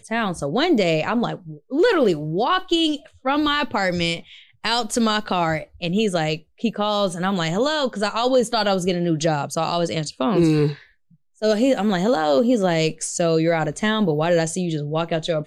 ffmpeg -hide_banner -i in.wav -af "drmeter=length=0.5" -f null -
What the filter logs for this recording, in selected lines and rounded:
Channel 1: DR: 7.3
Overall DR: 7.3